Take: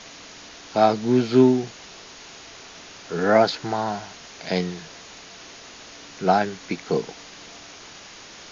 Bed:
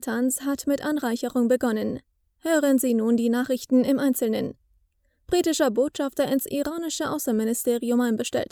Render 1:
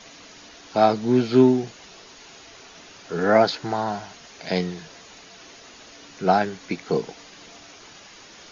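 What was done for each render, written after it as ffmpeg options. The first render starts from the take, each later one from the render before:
-af "afftdn=nr=6:nf=-44"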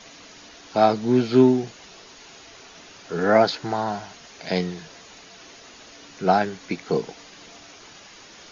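-af anull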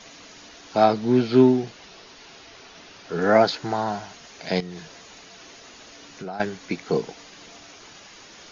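-filter_complex "[0:a]asettb=1/sr,asplit=3[a][b][c];[a]atrim=end=0.844[d];[b]atrim=start=0.84:end=3.22,asetpts=PTS-STARTPTS,afade=t=in:d=0.004:c=qsin,afade=t=out:st=2.376:d=0.004:c=qsin,lowpass=f=6k:w=0.5412,lowpass=f=6k:w=1.3066[e];[c]atrim=start=3.216[f];[d][e]acrossfade=d=0.004:c1=hsin:c2=qsin[g];[g][f]acrossfade=d=0.004:c1=qsin:c2=hsin,asettb=1/sr,asplit=3[h][i][j];[h]atrim=end=4.604[k];[i]atrim=start=4.6:end=6.4,asetpts=PTS-STARTPTS,afade=t=in:d=0.004:c=qsin,afade=t=out:st=1.796:d=0.004:c=qsin,acompressor=threshold=-31dB:ratio=6:attack=3.2:release=140:knee=1:detection=peak[l];[j]atrim=start=6.396[m];[k][l]acrossfade=d=0.004:c1=hsin:c2=qsin[n];[n][m]acrossfade=d=0.004:c1=qsin:c2=hsin"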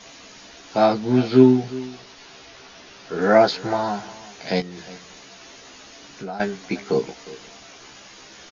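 -filter_complex "[0:a]asplit=2[a][b];[b]adelay=15,volume=-4dB[c];[a][c]amix=inputs=2:normalize=0,aecho=1:1:358:0.119"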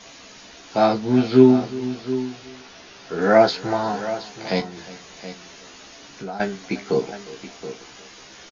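-filter_complex "[0:a]asplit=2[a][b];[b]adelay=36,volume=-14dB[c];[a][c]amix=inputs=2:normalize=0,aecho=1:1:724:0.224"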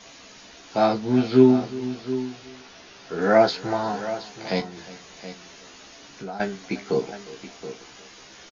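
-af "volume=-2.5dB"

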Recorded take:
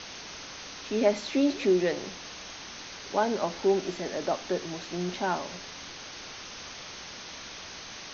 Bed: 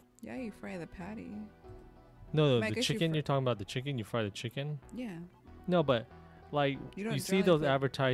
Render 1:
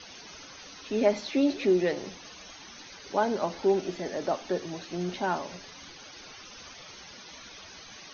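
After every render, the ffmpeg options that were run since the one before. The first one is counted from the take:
-af "afftdn=nr=13:nf=-43"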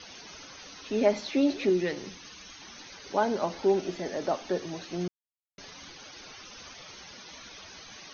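-filter_complex "[0:a]asettb=1/sr,asplit=3[a][b][c];[a]atrim=end=1.694[d];[b]atrim=start=1.69:end=2.62,asetpts=PTS-STARTPTS,afade=t=in:d=0.004:c=qsin,afade=t=out:st=0.926:d=0.004:c=qsin,equalizer=f=640:w=1.5:g=-8.5[e];[c]atrim=start=2.616[f];[d][e]acrossfade=d=0.004:c1=hsin:c2=qsin[g];[g][f]acrossfade=d=0.004:c1=qsin:c2=hsin,asplit=3[h][i][j];[h]atrim=end=5.08,asetpts=PTS-STARTPTS,afade=t=out:st=5.076:d=0.004:c=hsin[k];[i]atrim=start=5.08:end=5.58,asetpts=PTS-STARTPTS,volume=0[l];[j]atrim=start=5.58,asetpts=PTS-STARTPTS,afade=t=in:d=0.004:c=hsin[m];[k][l][m]concat=n=3:v=0:a=1"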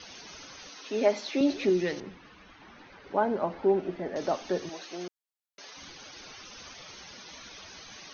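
-filter_complex "[0:a]asettb=1/sr,asplit=3[a][b][c];[a]atrim=end=0.694[d];[b]atrim=start=0.69:end=1.41,asetpts=PTS-STARTPTS,afade=t=in:d=0.004:c=qsin,afade=t=out:st=0.716:d=0.004:c=qsin,highpass=280[e];[c]atrim=start=1.406[f];[d][e]acrossfade=d=0.004:c1=hsin:c2=qsin[g];[g][f]acrossfade=d=0.004:c1=qsin:c2=hsin,asettb=1/sr,asplit=3[h][i][j];[h]atrim=end=2.004[k];[i]atrim=start=2:end=4.16,asetpts=PTS-STARTPTS,afade=t=in:d=0.004:c=qsin,afade=t=out:st=2.156:d=0.004:c=qsin,lowpass=1.9k[l];[j]atrim=start=4.156[m];[k][l]acrossfade=d=0.004:c1=hsin:c2=qsin[n];[n][m]acrossfade=d=0.004:c1=qsin:c2=hsin,asettb=1/sr,asplit=3[o][p][q];[o]atrim=end=4.694[r];[p]atrim=start=4.69:end=5.77,asetpts=PTS-STARTPTS,afade=t=in:d=0.004:c=qsin,afade=t=out:st=1.076:d=0.004:c=qsin,highpass=410[s];[q]atrim=start=5.766[t];[r][s]acrossfade=d=0.004:c1=hsin:c2=qsin[u];[u][t]acrossfade=d=0.004:c1=qsin:c2=hsin"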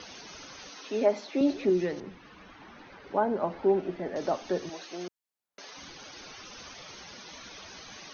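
-filter_complex "[0:a]acrossover=split=110|1500[a][b][c];[b]acompressor=mode=upward:threshold=-46dB:ratio=2.5[d];[c]alimiter=level_in=12.5dB:limit=-24dB:level=0:latency=1:release=330,volume=-12.5dB[e];[a][d][e]amix=inputs=3:normalize=0"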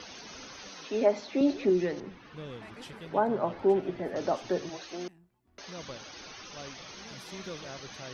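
-filter_complex "[1:a]volume=-15.5dB[a];[0:a][a]amix=inputs=2:normalize=0"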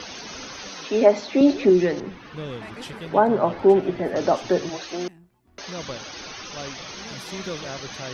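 -af "volume=9dB"

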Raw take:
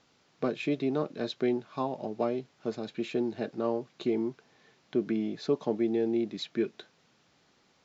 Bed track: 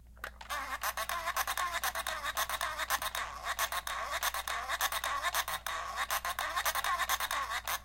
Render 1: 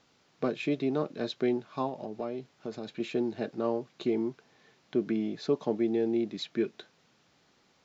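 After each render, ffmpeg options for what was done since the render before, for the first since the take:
-filter_complex "[0:a]asettb=1/sr,asplit=3[a][b][c];[a]atrim=end=1.894[d];[b]atrim=start=1.89:end=3,asetpts=PTS-STARTPTS,afade=t=in:d=0.004:c=qsin,afade=t=out:st=1.106:d=0.004:c=qsin,acompressor=threshold=-34dB:ratio=2:attack=3.2:release=140:knee=1:detection=peak[e];[c]atrim=start=2.996[f];[d][e]acrossfade=d=0.004:c1=hsin:c2=qsin[g];[g][f]acrossfade=d=0.004:c1=qsin:c2=hsin"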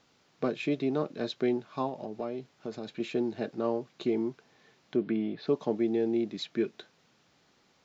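-filter_complex "[0:a]asplit=3[a][b][c];[a]afade=t=out:st=4.96:d=0.02[d];[b]lowpass=f=3.9k:w=0.5412,lowpass=f=3.9k:w=1.3066,afade=t=in:st=4.96:d=0.02,afade=t=out:st=5.46:d=0.02[e];[c]afade=t=in:st=5.46:d=0.02[f];[d][e][f]amix=inputs=3:normalize=0"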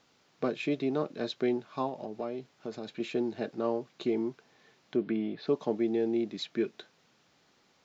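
-af "lowshelf=f=190:g=-3.5"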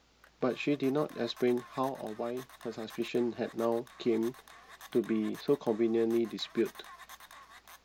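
-filter_complex "[1:a]volume=-18dB[a];[0:a][a]amix=inputs=2:normalize=0"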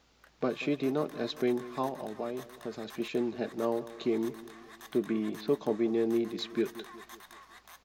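-filter_complex "[0:a]asplit=2[a][b];[b]adelay=184,lowpass=f=2k:p=1,volume=-16dB,asplit=2[c][d];[d]adelay=184,lowpass=f=2k:p=1,volume=0.52,asplit=2[e][f];[f]adelay=184,lowpass=f=2k:p=1,volume=0.52,asplit=2[g][h];[h]adelay=184,lowpass=f=2k:p=1,volume=0.52,asplit=2[i][j];[j]adelay=184,lowpass=f=2k:p=1,volume=0.52[k];[a][c][e][g][i][k]amix=inputs=6:normalize=0"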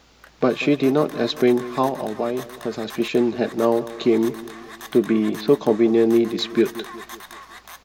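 -af "volume=12dB"

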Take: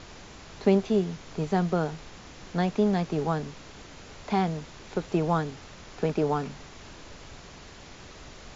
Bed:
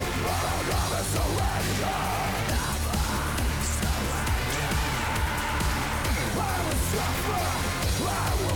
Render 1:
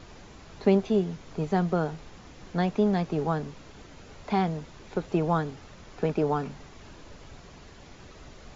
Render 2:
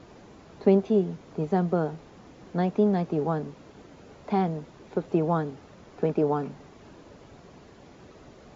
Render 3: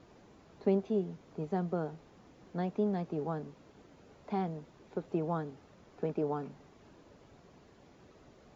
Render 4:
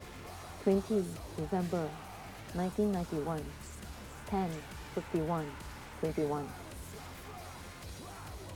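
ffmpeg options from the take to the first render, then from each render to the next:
-af "afftdn=nr=6:nf=-47"
-af "highpass=f=310:p=1,tiltshelf=f=850:g=7"
-af "volume=-9dB"
-filter_complex "[1:a]volume=-20dB[a];[0:a][a]amix=inputs=2:normalize=0"

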